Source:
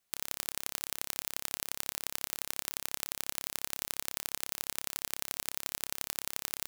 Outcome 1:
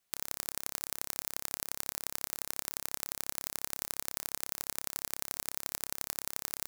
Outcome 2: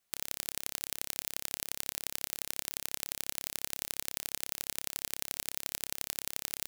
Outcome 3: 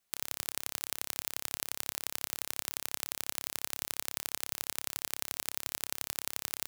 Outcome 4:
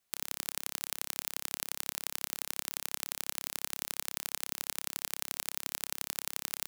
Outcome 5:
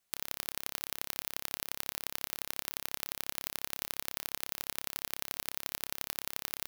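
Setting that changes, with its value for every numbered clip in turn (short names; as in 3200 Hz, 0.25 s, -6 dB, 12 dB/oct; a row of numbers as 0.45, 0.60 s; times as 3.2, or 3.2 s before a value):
dynamic EQ, frequency: 3000, 1100, 100, 270, 7900 Hz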